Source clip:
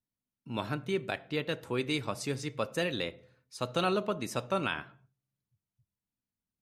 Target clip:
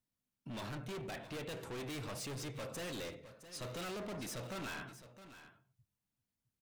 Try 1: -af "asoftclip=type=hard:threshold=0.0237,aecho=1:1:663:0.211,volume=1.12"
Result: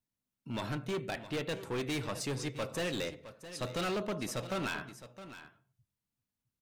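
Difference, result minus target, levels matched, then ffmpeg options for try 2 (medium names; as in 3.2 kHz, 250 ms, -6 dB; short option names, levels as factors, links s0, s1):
hard clipper: distortion -5 dB
-af "asoftclip=type=hard:threshold=0.0075,aecho=1:1:663:0.211,volume=1.12"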